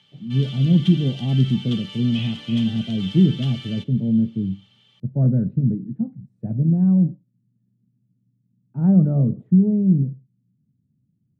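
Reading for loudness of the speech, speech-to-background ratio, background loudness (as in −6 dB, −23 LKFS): −20.5 LKFS, 15.0 dB, −35.5 LKFS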